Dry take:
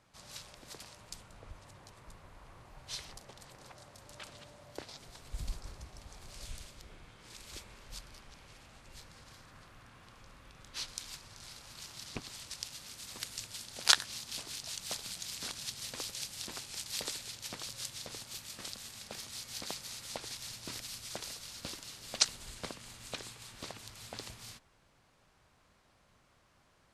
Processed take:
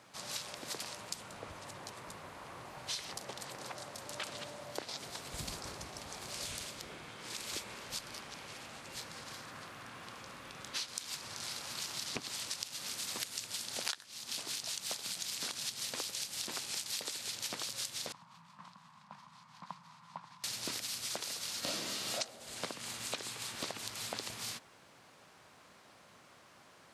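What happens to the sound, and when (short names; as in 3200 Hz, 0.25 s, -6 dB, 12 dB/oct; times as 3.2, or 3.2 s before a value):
18.12–20.44 double band-pass 410 Hz, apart 2.6 oct
21.6–22.14 reverb throw, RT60 0.83 s, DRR -12 dB
whole clip: Bessel high-pass 200 Hz, order 2; compressor 10:1, threshold -45 dBFS; gain +9.5 dB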